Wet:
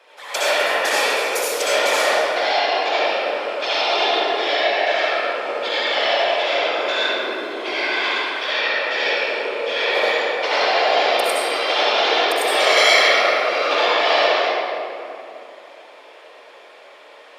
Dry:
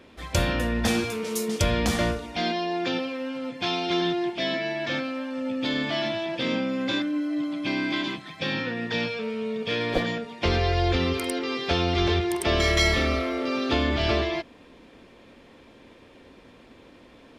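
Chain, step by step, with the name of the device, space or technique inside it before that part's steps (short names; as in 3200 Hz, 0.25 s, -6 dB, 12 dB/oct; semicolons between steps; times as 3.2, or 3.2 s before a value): whispering ghost (whisperiser; HPF 550 Hz 24 dB/oct; reverb RT60 2.8 s, pre-delay 58 ms, DRR -8.5 dB); gain +2.5 dB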